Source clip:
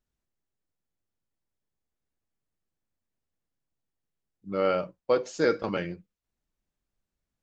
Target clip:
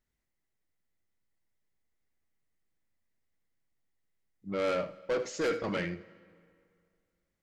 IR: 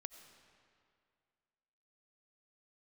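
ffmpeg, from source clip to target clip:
-filter_complex "[0:a]equalizer=f=2000:t=o:w=0.26:g=11,asoftclip=type=tanh:threshold=0.0501,asplit=2[s0][s1];[1:a]atrim=start_sample=2205,adelay=80[s2];[s1][s2]afir=irnorm=-1:irlink=0,volume=0.398[s3];[s0][s3]amix=inputs=2:normalize=0"

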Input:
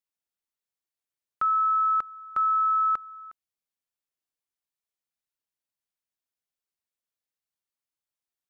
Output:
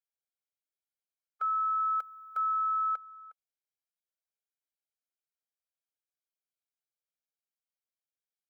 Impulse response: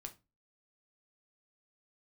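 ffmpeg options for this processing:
-filter_complex "[0:a]asettb=1/sr,asplit=3[s0][s1][s2];[s0]atrim=end=1.804[s3];[s1]atrim=start=1.8:end=2.53,asetpts=PTS-STARTPTS,afade=t=in:d=0.004:c=qsin,afade=t=out:st=0.726:d=0.004:c=qsin,aemphasis=mode=production:type=50fm[s4];[s2]atrim=start=2.526[s5];[s3][s4]acrossfade=d=0.004:c1=hsin:c2=qsin[s6];[s6][s5]acrossfade=d=0.004:c1=qsin:c2=hsin,afftfilt=real='re*eq(mod(floor(b*sr/1024/420),2),1)':imag='im*eq(mod(floor(b*sr/1024/420),2),1)':win_size=1024:overlap=0.75,volume=0.501"

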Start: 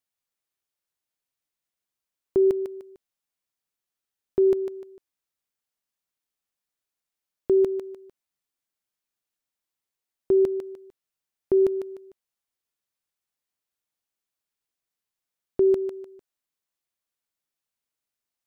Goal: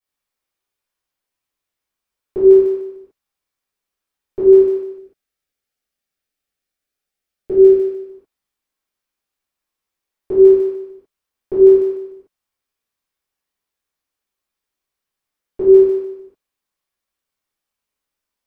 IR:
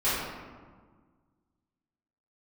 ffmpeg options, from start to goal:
-filter_complex "[0:a]asettb=1/sr,asplit=3[s0][s1][s2];[s0]atrim=end=4.894[s3];[s1]atrim=start=4.89:end=7.99,asetpts=PTS-STARTPTS,afade=t=in:d=0.004:c=qsin,afade=t=out:st=3.096:d=0.004:c=qsin,equalizer=f=1000:w=5.1:g=-14[s4];[s2]atrim=start=7.986[s5];[s3][s4]acrossfade=d=0.004:c1=hsin:c2=qsin[s6];[s6][s5]acrossfade=d=0.004:c1=qsin:c2=hsin[s7];[1:a]atrim=start_sample=2205,afade=t=out:st=0.2:d=0.01,atrim=end_sample=9261[s8];[s7][s8]afir=irnorm=-1:irlink=0,volume=0.596"

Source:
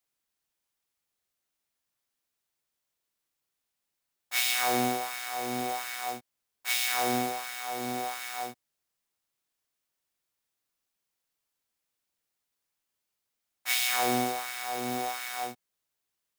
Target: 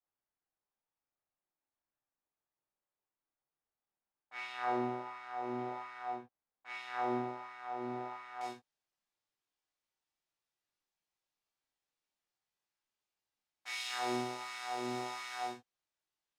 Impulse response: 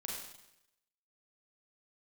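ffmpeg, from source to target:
-filter_complex "[0:a]asetnsamples=n=441:p=0,asendcmd='8.41 lowpass f 6000',lowpass=1500,alimiter=limit=0.0944:level=0:latency=1:release=320,equalizer=f=840:t=o:w=0.77:g=3[s0];[1:a]atrim=start_sample=2205,atrim=end_sample=6174,asetrate=74970,aresample=44100[s1];[s0][s1]afir=irnorm=-1:irlink=0"

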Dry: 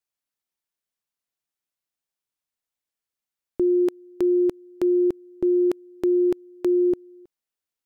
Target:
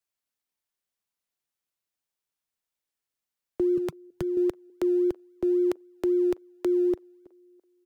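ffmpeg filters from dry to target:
-filter_complex "[0:a]asettb=1/sr,asplit=3[s0][s1][s2];[s0]atrim=end=3.774[s3];[s1]atrim=start=3.77:end=4.37,asetpts=PTS-STARTPTS,afade=t=in:d=0.004:c=qsin,afade=t=out:st=0.596:d=0.004:c=qsin,lowshelf=f=220:t=q:w=3:g=11[s4];[s2]atrim=start=4.366[s5];[s3][s4]acrossfade=d=0.004:c1=hsin:c2=qsin[s6];[s6][s5]acrossfade=d=0.004:c1=qsin:c2=hsin,acrossover=split=130|340[s7][s8][s9];[s7]acrusher=samples=33:mix=1:aa=0.000001:lfo=1:lforange=19.8:lforate=3.7[s10];[s8]acompressor=threshold=0.01:ratio=6[s11];[s9]asplit=2[s12][s13];[s13]adelay=330,lowpass=f=1100:p=1,volume=0.0891,asplit=2[s14][s15];[s15]adelay=330,lowpass=f=1100:p=1,volume=0.34,asplit=2[s16][s17];[s17]adelay=330,lowpass=f=1100:p=1,volume=0.34[s18];[s12][s14][s16][s18]amix=inputs=4:normalize=0[s19];[s10][s11][s19]amix=inputs=3:normalize=0"

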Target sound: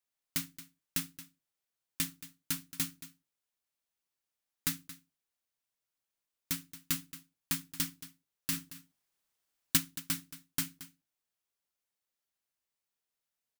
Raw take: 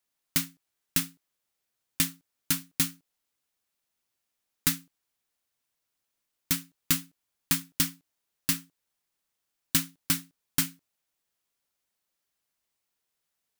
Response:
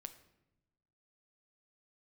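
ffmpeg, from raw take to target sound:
-filter_complex "[0:a]bandreject=f=50:t=h:w=6,bandreject=f=100:t=h:w=6,bandreject=f=150:t=h:w=6,bandreject=f=200:t=h:w=6,bandreject=f=250:t=h:w=6,bandreject=f=300:t=h:w=6,bandreject=f=350:t=h:w=6,asplit=3[s0][s1][s2];[s0]afade=t=out:st=8.52:d=0.02[s3];[s1]acontrast=62,afade=t=in:st=8.52:d=0.02,afade=t=out:st=9.76:d=0.02[s4];[s2]afade=t=in:st=9.76:d=0.02[s5];[s3][s4][s5]amix=inputs=3:normalize=0,aecho=1:1:225:0.168,volume=0.422"

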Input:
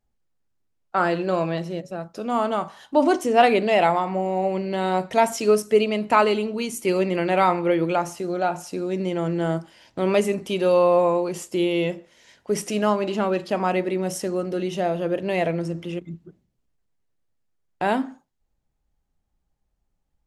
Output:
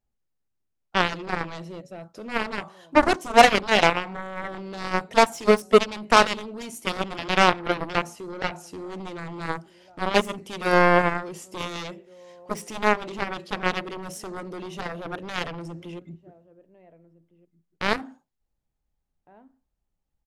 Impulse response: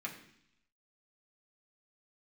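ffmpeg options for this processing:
-filter_complex "[0:a]asplit=2[s0][s1];[s1]adelay=1458,volume=0.0631,highshelf=f=4000:g=-32.8[s2];[s0][s2]amix=inputs=2:normalize=0,aeval=exprs='0.668*(cos(1*acos(clip(val(0)/0.668,-1,1)))-cos(1*PI/2))+0.133*(cos(7*acos(clip(val(0)/0.668,-1,1)))-cos(7*PI/2))':c=same,volume=1.33"

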